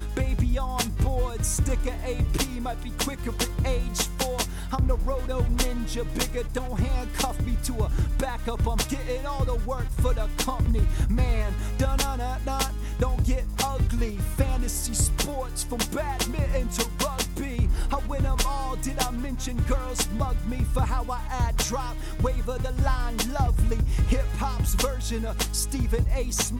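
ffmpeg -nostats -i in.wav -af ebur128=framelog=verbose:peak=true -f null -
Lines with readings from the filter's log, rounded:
Integrated loudness:
  I:         -27.4 LUFS
  Threshold: -37.4 LUFS
Loudness range:
  LRA:         1.6 LU
  Threshold: -47.5 LUFS
  LRA low:   -28.1 LUFS
  LRA high:  -26.6 LUFS
True peak:
  Peak:       -9.1 dBFS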